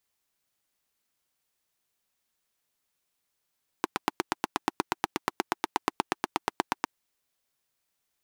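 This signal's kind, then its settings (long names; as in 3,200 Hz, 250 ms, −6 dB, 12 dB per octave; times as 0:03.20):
pulse-train model of a single-cylinder engine, steady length 3.01 s, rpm 1,000, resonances 340/870 Hz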